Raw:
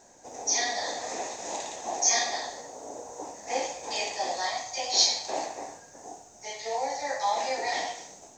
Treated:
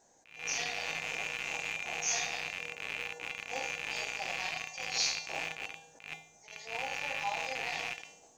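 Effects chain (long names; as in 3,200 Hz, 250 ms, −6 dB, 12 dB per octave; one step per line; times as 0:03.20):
loose part that buzzes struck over −55 dBFS, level −13 dBFS
tuned comb filter 160 Hz, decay 0.53 s, harmonics odd, mix 80%
level that may rise only so fast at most 120 dB per second
level +2 dB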